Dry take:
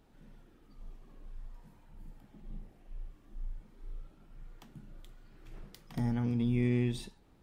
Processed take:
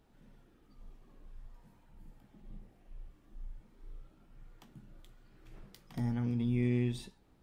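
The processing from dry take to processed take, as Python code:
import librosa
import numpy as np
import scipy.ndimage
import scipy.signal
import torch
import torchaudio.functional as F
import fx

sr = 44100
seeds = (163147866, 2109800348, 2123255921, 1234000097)

y = fx.doubler(x, sr, ms=16.0, db=-12.0)
y = y * 10.0 ** (-3.0 / 20.0)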